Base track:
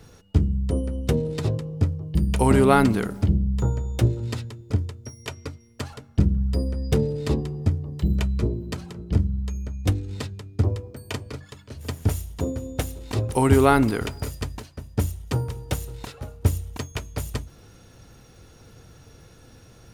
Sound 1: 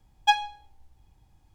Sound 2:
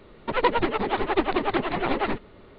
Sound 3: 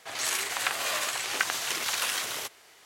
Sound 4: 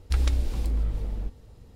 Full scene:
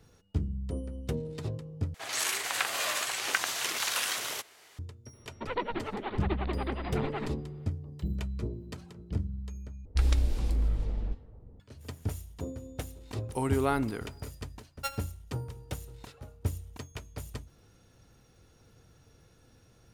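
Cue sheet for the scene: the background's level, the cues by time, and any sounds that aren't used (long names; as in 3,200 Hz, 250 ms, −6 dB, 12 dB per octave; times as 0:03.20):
base track −11 dB
0:01.94: overwrite with 3 −1.5 dB
0:05.13: mix in 2 −11.5 dB + parametric band 210 Hz +5.5 dB 0.44 octaves
0:09.85: overwrite with 4 −1.5 dB + low-pass that shuts in the quiet parts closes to 520 Hz, open at −21.5 dBFS
0:14.56: mix in 1 −15 dB + samples sorted by size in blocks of 32 samples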